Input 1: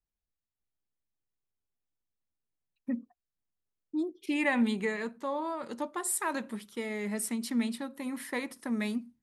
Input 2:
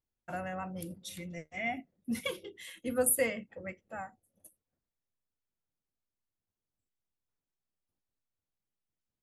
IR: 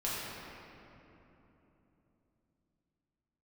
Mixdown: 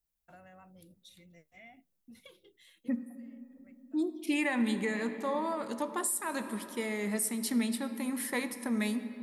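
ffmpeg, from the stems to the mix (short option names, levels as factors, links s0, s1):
-filter_complex "[0:a]highshelf=f=8400:g=12,volume=0.944,asplit=3[s0][s1][s2];[s1]volume=0.178[s3];[1:a]agate=range=0.0224:threshold=0.00112:ratio=3:detection=peak,equalizer=f=3900:t=o:w=0.37:g=9,acompressor=threshold=0.0178:ratio=6,volume=0.168[s4];[s2]apad=whole_len=407014[s5];[s4][s5]sidechaincompress=threshold=0.00316:ratio=3:attack=16:release=1020[s6];[2:a]atrim=start_sample=2205[s7];[s3][s7]afir=irnorm=-1:irlink=0[s8];[s0][s6][s8]amix=inputs=3:normalize=0,alimiter=limit=0.0891:level=0:latency=1:release=274"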